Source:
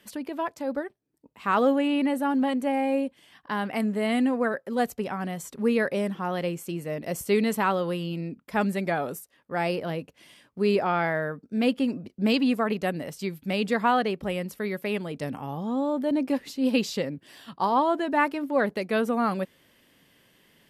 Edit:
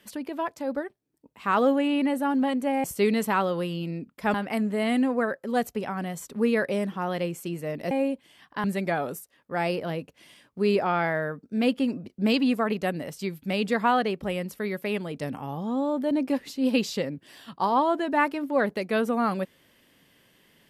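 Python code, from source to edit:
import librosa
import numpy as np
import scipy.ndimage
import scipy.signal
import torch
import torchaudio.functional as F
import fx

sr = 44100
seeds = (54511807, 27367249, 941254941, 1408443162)

y = fx.edit(x, sr, fx.swap(start_s=2.84, length_s=0.73, other_s=7.14, other_length_s=1.5), tone=tone)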